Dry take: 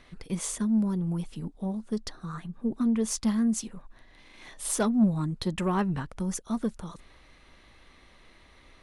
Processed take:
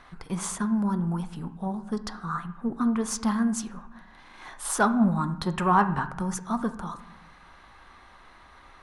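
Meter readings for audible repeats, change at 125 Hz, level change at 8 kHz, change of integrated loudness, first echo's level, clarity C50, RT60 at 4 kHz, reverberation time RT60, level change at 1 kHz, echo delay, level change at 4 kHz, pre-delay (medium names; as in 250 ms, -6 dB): no echo, +1.0 dB, 0.0 dB, +1.5 dB, no echo, 12.5 dB, 0.65 s, 0.80 s, +11.0 dB, no echo, 0.0 dB, 6 ms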